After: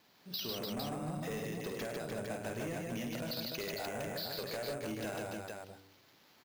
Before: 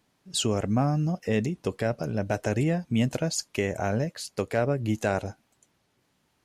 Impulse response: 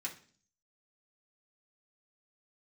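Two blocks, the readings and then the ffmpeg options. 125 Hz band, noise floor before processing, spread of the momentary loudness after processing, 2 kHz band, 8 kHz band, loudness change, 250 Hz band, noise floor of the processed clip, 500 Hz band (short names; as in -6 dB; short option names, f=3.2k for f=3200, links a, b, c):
-16.5 dB, -72 dBFS, 4 LU, -8.5 dB, -13.0 dB, -11.5 dB, -13.5 dB, -65 dBFS, -11.0 dB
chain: -filter_complex "[0:a]aemphasis=mode=production:type=bsi,bandreject=f=96.66:t=h:w=4,bandreject=f=193.32:t=h:w=4,bandreject=f=289.98:t=h:w=4,bandreject=f=386.64:t=h:w=4,bandreject=f=483.3:t=h:w=4,aresample=11025,aresample=44100,acompressor=threshold=-41dB:ratio=6,asplit=2[a][b];[b]aecho=0:1:50|103|150|296|455:0.447|0.282|0.708|0.501|0.501[c];[a][c]amix=inputs=2:normalize=0,acrusher=samples=5:mix=1:aa=0.000001,asoftclip=type=tanh:threshold=-37dB,volume=4dB"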